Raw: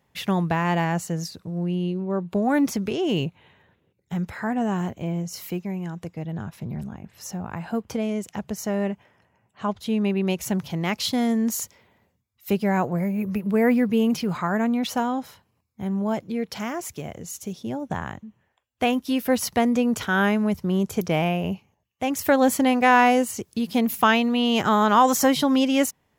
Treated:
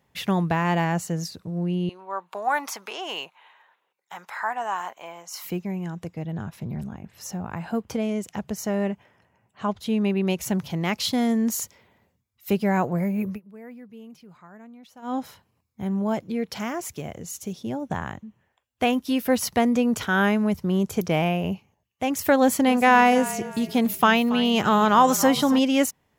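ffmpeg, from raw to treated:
-filter_complex "[0:a]asettb=1/sr,asplit=3[a][b][c];[a]atrim=end=1.894[d];[b]atrim=start=1.89:end=5.45,asetpts=PTS-STARTPTS,afade=t=in:d=0.004:c=qsin,afade=t=out:st=3.556:d=0.004:c=qsin,highpass=f=950:t=q:w=2.3[e];[c]atrim=start=5.446[f];[d][e]acrossfade=d=0.004:c1=hsin:c2=qsin[g];[g][f]acrossfade=d=0.004:c1=qsin:c2=hsin,asettb=1/sr,asplit=3[h][i][j];[h]atrim=end=22.384[k];[i]atrim=start=22.38:end=25.59,asetpts=PTS-STARTPTS,afade=t=in:d=0.004:c=qsin,afade=t=out:st=3.206:d=0.004:c=qsin,asplit=4[l][m][n][o];[m]adelay=278,afreqshift=-36,volume=-15.5dB[p];[n]adelay=556,afreqshift=-72,volume=-24.6dB[q];[o]adelay=834,afreqshift=-108,volume=-33.7dB[r];[l][p][q][r]amix=inputs=4:normalize=0,atrim=end_sample=141561[s];[j]atrim=start=25.586[t];[k][s]acrossfade=d=0.004:c1=hsin:c2=qsin[u];[u][t]acrossfade=d=0.004:c1=qsin:c2=hsin,asplit=3[v][w][x];[v]atrim=end=13.4,asetpts=PTS-STARTPTS,afade=t=out:st=13.27:d=0.13:silence=0.0707946[y];[w]atrim=start=13.4:end=15.02,asetpts=PTS-STARTPTS,volume=-23dB[z];[x]atrim=start=15.02,asetpts=PTS-STARTPTS,afade=t=in:d=0.13:silence=0.0707946[aa];[y][z][aa]concat=n=3:v=0:a=1"

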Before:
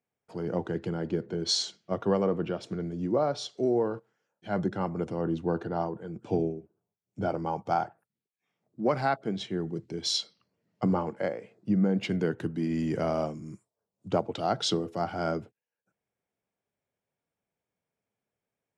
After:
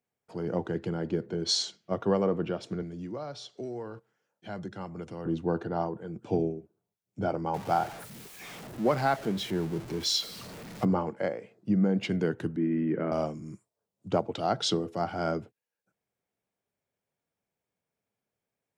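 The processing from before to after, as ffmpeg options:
-filter_complex "[0:a]asettb=1/sr,asplit=3[a][b][c];[a]atrim=end=2.824[d];[b]atrim=start=2.82:end=5.26,asetpts=PTS-STARTPTS,afade=t=in:d=0.004:c=qsin,afade=t=out:st=2.436:d=0.004:c=qsin,acrossover=split=120|1300|3200[e][f][g][h];[e]acompressor=threshold=-49dB:ratio=3[i];[f]acompressor=threshold=-40dB:ratio=3[j];[g]acompressor=threshold=-51dB:ratio=3[k];[h]acompressor=threshold=-48dB:ratio=3[l];[i][j][k][l]amix=inputs=4:normalize=0[m];[c]atrim=start=5.256[n];[d][m]acrossfade=d=0.004:c1=hsin:c2=qsin[o];[o][n]acrossfade=d=0.004:c1=qsin:c2=hsin,asettb=1/sr,asplit=3[p][q][r];[p]atrim=end=7.544[s];[q]atrim=start=7.54:end=10.85,asetpts=PTS-STARTPTS,afade=t=in:d=0.004:c=qsin,afade=t=out:st=3.306:d=0.004:c=qsin,aeval=exprs='val(0)+0.5*0.0133*sgn(val(0))':c=same[t];[r]atrim=start=10.846[u];[s][t]acrossfade=d=0.004:c1=hsin:c2=qsin[v];[v][u]acrossfade=d=0.004:c1=qsin:c2=hsin,asettb=1/sr,asplit=3[w][x][y];[w]atrim=end=12.564[z];[x]atrim=start=12.56:end=13.12,asetpts=PTS-STARTPTS,afade=t=in:d=0.004:c=qsin,afade=t=out:st=0.556:d=0.004:c=qsin,highpass=f=150:w=0.5412,highpass=f=150:w=1.3066,equalizer=f=330:t=q:w=4:g=4,equalizer=f=720:t=q:w=4:g=-10,equalizer=f=1k:t=q:w=4:g=-5,lowpass=f=2.2k:w=0.5412,lowpass=f=2.2k:w=1.3066[aa];[y]atrim=start=13.116[ab];[z][aa]acrossfade=d=0.004:c1=hsin:c2=qsin[ac];[ac][ab]acrossfade=d=0.004:c1=qsin:c2=hsin"

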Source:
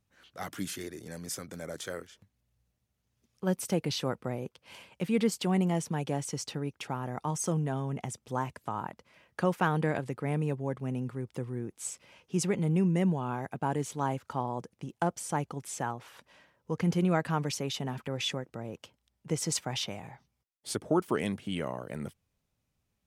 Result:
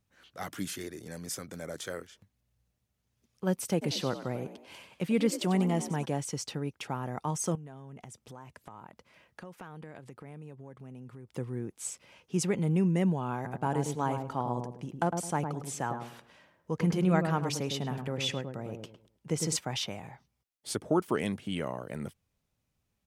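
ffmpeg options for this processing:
-filter_complex "[0:a]asplit=3[a][b][c];[a]afade=t=out:st=3.81:d=0.02[d];[b]asplit=5[e][f][g][h][i];[f]adelay=94,afreqshift=56,volume=-12dB[j];[g]adelay=188,afreqshift=112,volume=-19.5dB[k];[h]adelay=282,afreqshift=168,volume=-27.1dB[l];[i]adelay=376,afreqshift=224,volume=-34.6dB[m];[e][j][k][l][m]amix=inputs=5:normalize=0,afade=t=in:st=3.81:d=0.02,afade=t=out:st=6.04:d=0.02[n];[c]afade=t=in:st=6.04:d=0.02[o];[d][n][o]amix=inputs=3:normalize=0,asettb=1/sr,asplit=3[p][q][r];[p]atrim=end=7.554[s];[q]atrim=start=7.55:end=11.32,asetpts=PTS-STARTPTS,afade=t=in:d=0.004:c=qsin,afade=t=out:st=3.766:d=0.004:c=qsin,acompressor=threshold=-45dB:ratio=4:attack=3.2:release=140:knee=1:detection=peak[t];[r]atrim=start=11.316[u];[s][t]acrossfade=d=0.004:c1=hsin:c2=qsin[v];[v][u]acrossfade=d=0.004:c1=qsin:c2=hsin,asplit=3[w][x][y];[w]afade=t=out:st=13.44:d=0.02[z];[x]asplit=2[aa][ab];[ab]adelay=106,lowpass=f=800:p=1,volume=-4dB,asplit=2[ac][ad];[ad]adelay=106,lowpass=f=800:p=1,volume=0.33,asplit=2[ae][af];[af]adelay=106,lowpass=f=800:p=1,volume=0.33,asplit=2[ag][ah];[ah]adelay=106,lowpass=f=800:p=1,volume=0.33[ai];[aa][ac][ae][ag][ai]amix=inputs=5:normalize=0,afade=t=in:st=13.44:d=0.02,afade=t=out:st=19.55:d=0.02[aj];[y]afade=t=in:st=19.55:d=0.02[ak];[z][aj][ak]amix=inputs=3:normalize=0"

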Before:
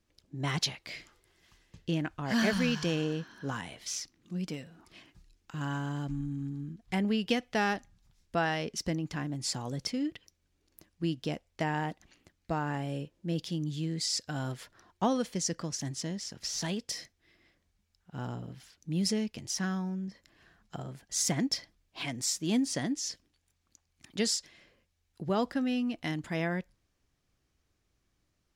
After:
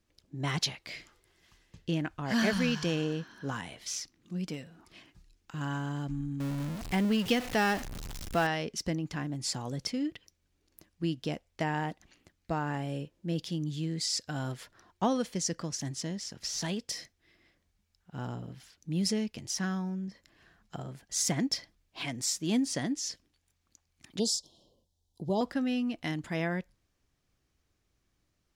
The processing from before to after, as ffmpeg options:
-filter_complex "[0:a]asettb=1/sr,asplit=3[a][b][c];[a]atrim=end=6.404[d];[b]atrim=start=6.4:end=8.47,asetpts=PTS-STARTPTS,afade=t=in:d=0.004:c=qsin,afade=t=out:st=2.066:d=0.004:c=qsin,aeval=exprs='val(0)+0.5*0.02*sgn(val(0))':c=same[e];[c]atrim=start=8.466[f];[d][e]acrossfade=d=0.004:c1=hsin:c2=qsin[g];[g][f]acrossfade=d=0.004:c1=qsin:c2=hsin,asettb=1/sr,asplit=3[h][i][j];[h]atrim=end=24.194[k];[i]atrim=start=24.19:end=25.41,asetpts=PTS-STARTPTS,afade=t=in:d=0.004:c=qsin,afade=t=out:st=1.216:d=0.004:c=qsin,asuperstop=centerf=1800:order=12:qfactor=0.81[l];[j]atrim=start=25.406[m];[k][l]acrossfade=d=0.004:c1=hsin:c2=qsin[n];[n][m]acrossfade=d=0.004:c1=qsin:c2=hsin"

